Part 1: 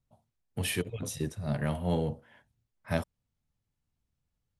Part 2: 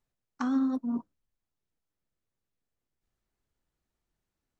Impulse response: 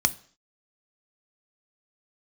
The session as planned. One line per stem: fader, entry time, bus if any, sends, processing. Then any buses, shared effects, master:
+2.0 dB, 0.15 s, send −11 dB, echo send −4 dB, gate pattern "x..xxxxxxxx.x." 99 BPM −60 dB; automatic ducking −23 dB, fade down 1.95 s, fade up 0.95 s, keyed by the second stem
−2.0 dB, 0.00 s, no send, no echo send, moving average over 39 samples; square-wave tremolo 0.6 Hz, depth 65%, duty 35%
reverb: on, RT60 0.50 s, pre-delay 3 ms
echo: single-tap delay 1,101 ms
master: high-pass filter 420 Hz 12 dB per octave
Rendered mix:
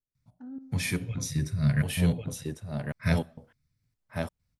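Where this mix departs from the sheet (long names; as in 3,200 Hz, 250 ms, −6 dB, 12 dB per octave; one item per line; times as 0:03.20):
stem 2 −2.0 dB → −12.0 dB
master: missing high-pass filter 420 Hz 12 dB per octave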